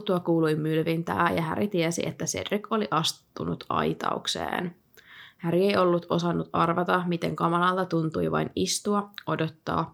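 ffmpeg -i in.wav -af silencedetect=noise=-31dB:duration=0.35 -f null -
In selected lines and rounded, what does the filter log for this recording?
silence_start: 4.69
silence_end: 5.44 | silence_duration: 0.75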